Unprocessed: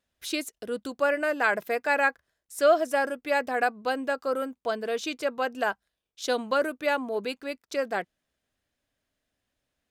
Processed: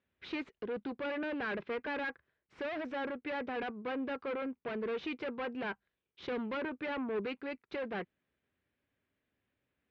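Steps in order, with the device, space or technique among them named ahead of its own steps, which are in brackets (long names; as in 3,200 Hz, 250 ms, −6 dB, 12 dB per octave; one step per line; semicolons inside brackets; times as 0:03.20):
guitar amplifier (tube saturation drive 34 dB, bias 0.45; bass and treble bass +3 dB, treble −15 dB; loudspeaker in its box 78–4,200 Hz, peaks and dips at 390 Hz +5 dB, 670 Hz −6 dB, 2,300 Hz +4 dB)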